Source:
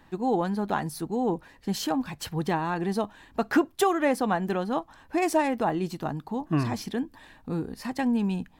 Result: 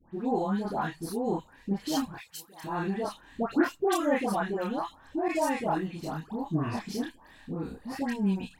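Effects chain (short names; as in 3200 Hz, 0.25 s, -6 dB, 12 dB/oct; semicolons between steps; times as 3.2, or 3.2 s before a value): 2.18–2.64 pre-emphasis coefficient 0.97; chorus voices 2, 1.5 Hz, delay 28 ms, depth 3 ms; dispersion highs, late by 0.135 s, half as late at 1400 Hz; 5.28–5.79 expander -30 dBFS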